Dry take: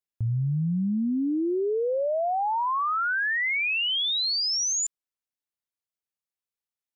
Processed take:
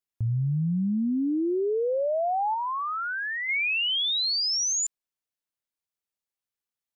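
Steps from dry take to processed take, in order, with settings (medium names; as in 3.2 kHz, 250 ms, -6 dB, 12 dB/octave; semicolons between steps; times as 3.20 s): 2.54–3.49 s: peaking EQ 1.9 kHz -5 dB 2.6 oct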